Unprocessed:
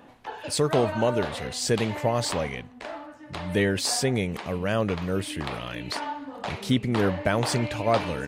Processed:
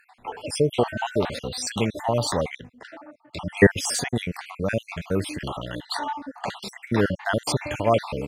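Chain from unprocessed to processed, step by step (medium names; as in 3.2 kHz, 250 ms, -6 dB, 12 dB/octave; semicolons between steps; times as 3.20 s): random holes in the spectrogram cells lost 55%; 2.48–3.67 s: three bands expanded up and down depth 100%; trim +3.5 dB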